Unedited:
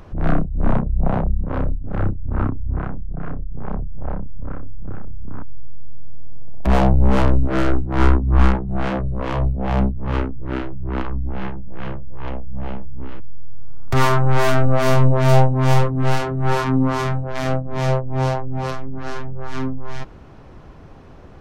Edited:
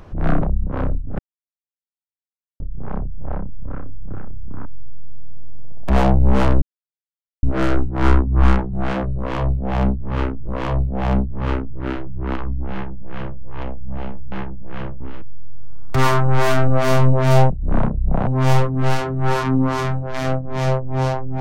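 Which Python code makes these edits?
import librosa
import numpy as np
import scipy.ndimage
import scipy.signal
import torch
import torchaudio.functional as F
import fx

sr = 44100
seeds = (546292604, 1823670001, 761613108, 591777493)

y = fx.edit(x, sr, fx.move(start_s=0.42, length_s=0.77, to_s=15.48),
    fx.silence(start_s=1.96, length_s=1.41),
    fx.insert_silence(at_s=7.39, length_s=0.81),
    fx.repeat(start_s=9.14, length_s=1.3, count=2),
    fx.duplicate(start_s=11.38, length_s=0.68, to_s=12.98), tone=tone)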